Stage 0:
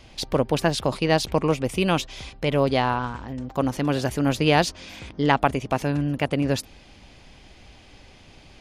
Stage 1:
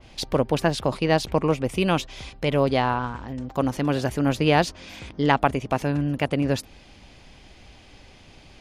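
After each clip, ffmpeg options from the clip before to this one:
ffmpeg -i in.wav -af "adynamicequalizer=threshold=0.0126:dfrequency=2700:dqfactor=0.7:tfrequency=2700:tqfactor=0.7:attack=5:release=100:ratio=0.375:range=2.5:mode=cutabove:tftype=highshelf" out.wav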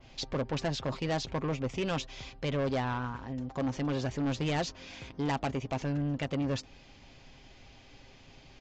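ffmpeg -i in.wav -af "aecho=1:1:7.5:0.35,aresample=16000,asoftclip=type=tanh:threshold=-20dB,aresample=44100,volume=-6dB" out.wav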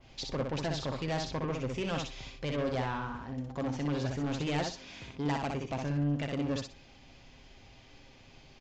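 ffmpeg -i in.wav -af "aecho=1:1:62|124|186:0.631|0.126|0.0252,volume=-2.5dB" out.wav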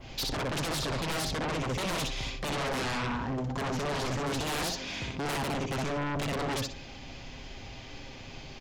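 ffmpeg -i in.wav -af "aeval=exprs='0.0708*sin(PI/2*4.47*val(0)/0.0708)':channel_layout=same,volume=-5.5dB" out.wav

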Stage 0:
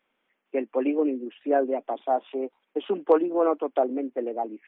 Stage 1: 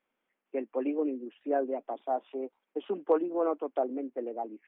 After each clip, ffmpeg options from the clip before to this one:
ffmpeg -i in.wav -af "highshelf=frequency=2900:gain=-8,volume=-6dB" out.wav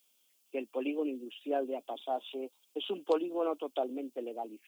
ffmpeg -i in.wav -af "aexciter=amount=15.8:drive=6.5:freq=3000,volume=-3.5dB" out.wav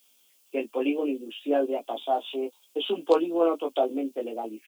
ffmpeg -i in.wav -filter_complex "[0:a]asplit=2[link_01][link_02];[link_02]adelay=18,volume=-3.5dB[link_03];[link_01][link_03]amix=inputs=2:normalize=0,volume=6.5dB" out.wav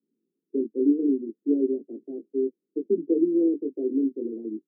ffmpeg -i in.wav -af "asuperpass=centerf=240:order=12:qfactor=0.89,volume=6.5dB" out.wav

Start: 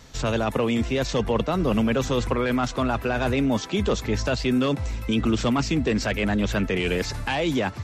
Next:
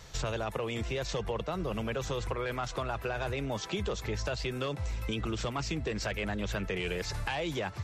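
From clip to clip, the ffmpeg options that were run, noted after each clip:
ffmpeg -i in.wav -af "equalizer=frequency=250:width=3.9:gain=-14.5,acompressor=threshold=-29dB:ratio=6,volume=-1.5dB" out.wav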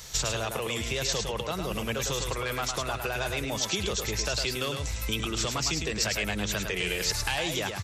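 ffmpeg -i in.wav -af "crystalizer=i=4.5:c=0,aecho=1:1:106:0.531" out.wav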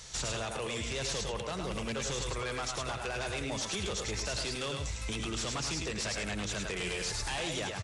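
ffmpeg -i in.wav -af "aeval=exprs='0.0562*(abs(mod(val(0)/0.0562+3,4)-2)-1)':channel_layout=same,aresample=22050,aresample=44100,aecho=1:1:84:0.282,volume=-4dB" out.wav

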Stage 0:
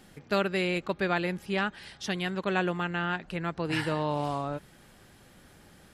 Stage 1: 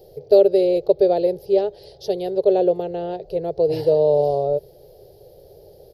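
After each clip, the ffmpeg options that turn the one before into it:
ffmpeg -i in.wav -af "firequalizer=gain_entry='entry(140,0);entry(230,-22);entry(410,15);entry(600,11);entry(1100,-23);entry(1500,-26);entry(2300,-21);entry(4600,0);entry(8000,-23);entry(12000,4)':delay=0.05:min_phase=1,volume=5.5dB" out.wav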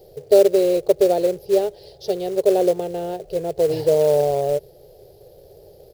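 ffmpeg -i in.wav -af "acrusher=bits=5:mode=log:mix=0:aa=0.000001" out.wav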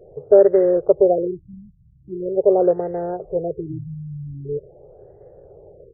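ffmpeg -i in.wav -af "afftfilt=real='re*lt(b*sr/1024,220*pow(2100/220,0.5+0.5*sin(2*PI*0.43*pts/sr)))':imag='im*lt(b*sr/1024,220*pow(2100/220,0.5+0.5*sin(2*PI*0.43*pts/sr)))':win_size=1024:overlap=0.75,volume=1.5dB" out.wav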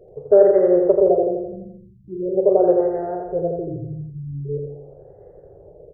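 ffmpeg -i in.wav -filter_complex "[0:a]asplit=2[link_01][link_02];[link_02]adelay=42,volume=-12dB[link_03];[link_01][link_03]amix=inputs=2:normalize=0,asplit=2[link_04][link_05];[link_05]aecho=0:1:84|168|252|336|420|504|588:0.631|0.347|0.191|0.105|0.0577|0.0318|0.0175[link_06];[link_04][link_06]amix=inputs=2:normalize=0,volume=-1.5dB" out.wav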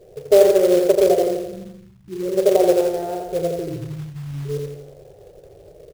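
ffmpeg -i in.wav -af "aecho=1:1:105:0.0891,acrusher=bits=4:mode=log:mix=0:aa=0.000001" out.wav

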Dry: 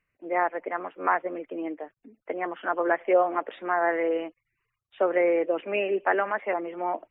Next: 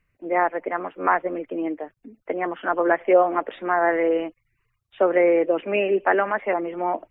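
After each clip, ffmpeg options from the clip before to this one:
ffmpeg -i in.wav -af "lowshelf=frequency=180:gain=11,volume=3.5dB" out.wav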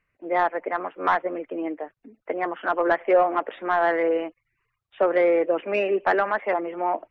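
ffmpeg -i in.wav -filter_complex "[0:a]asplit=2[link_01][link_02];[link_02]highpass=frequency=720:poles=1,volume=11dB,asoftclip=type=tanh:threshold=-5dB[link_03];[link_01][link_03]amix=inputs=2:normalize=0,lowpass=frequency=1800:poles=1,volume=-6dB,volume=-3dB" out.wav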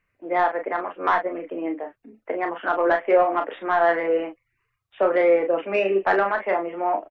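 ffmpeg -i in.wav -af "aecho=1:1:31|41:0.422|0.355" out.wav

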